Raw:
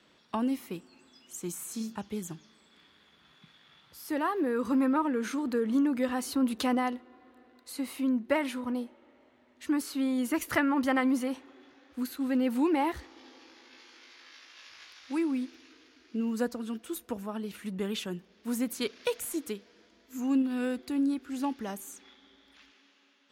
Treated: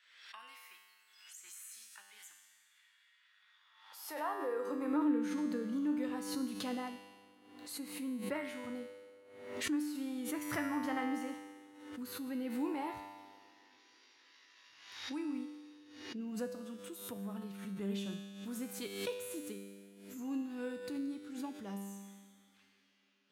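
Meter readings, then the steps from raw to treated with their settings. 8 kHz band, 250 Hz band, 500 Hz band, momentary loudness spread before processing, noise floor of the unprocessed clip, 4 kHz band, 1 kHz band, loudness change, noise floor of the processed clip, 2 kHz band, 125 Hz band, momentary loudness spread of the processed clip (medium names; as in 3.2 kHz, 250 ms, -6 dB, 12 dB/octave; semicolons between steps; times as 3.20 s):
-6.5 dB, -9.0 dB, -8.5 dB, 16 LU, -64 dBFS, -6.0 dB, -9.0 dB, -8.5 dB, -69 dBFS, -8.5 dB, no reading, 18 LU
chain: feedback comb 99 Hz, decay 1.6 s, harmonics all, mix 90%; high-pass sweep 1.8 kHz -> 120 Hz, 3.26–5.95 s; swell ahead of each attack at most 61 dB/s; trim +4.5 dB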